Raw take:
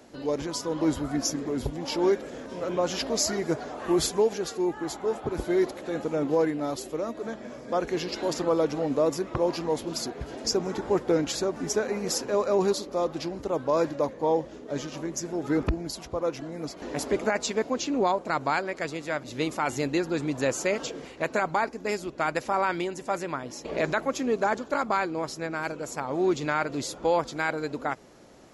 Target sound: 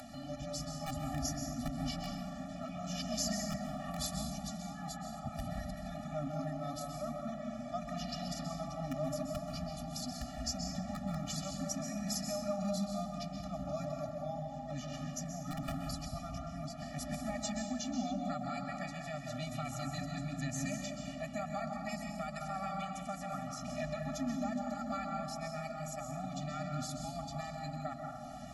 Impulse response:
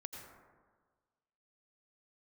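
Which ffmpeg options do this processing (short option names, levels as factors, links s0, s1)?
-filter_complex "[0:a]acrossover=split=280|3800[s0][s1][s2];[s0]aeval=exprs='(mod(17.8*val(0)+1,2)-1)/17.8':c=same[s3];[s1]alimiter=limit=0.075:level=0:latency=1:release=485[s4];[s3][s4][s2]amix=inputs=3:normalize=0,acompressor=mode=upward:threshold=0.0316:ratio=2.5[s5];[1:a]atrim=start_sample=2205,asetrate=29106,aresample=44100[s6];[s5][s6]afir=irnorm=-1:irlink=0,afftfilt=real='re*eq(mod(floor(b*sr/1024/280),2),0)':imag='im*eq(mod(floor(b*sr/1024/280),2),0)':win_size=1024:overlap=0.75,volume=0.75"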